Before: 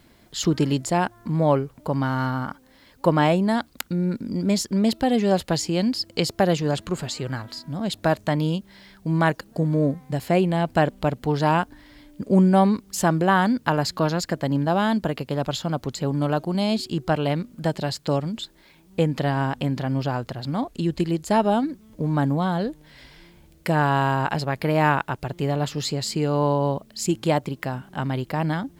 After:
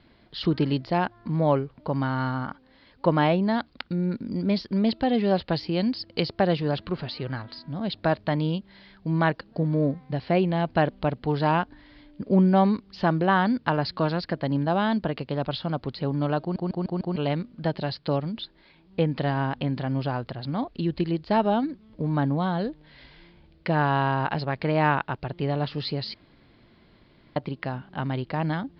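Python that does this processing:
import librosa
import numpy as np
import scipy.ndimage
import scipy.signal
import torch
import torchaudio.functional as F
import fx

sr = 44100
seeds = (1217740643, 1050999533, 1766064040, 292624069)

y = fx.edit(x, sr, fx.stutter_over(start_s=16.41, slice_s=0.15, count=5),
    fx.room_tone_fill(start_s=26.14, length_s=1.22), tone=tone)
y = scipy.signal.sosfilt(scipy.signal.butter(12, 4800.0, 'lowpass', fs=sr, output='sos'), y)
y = y * librosa.db_to_amplitude(-2.5)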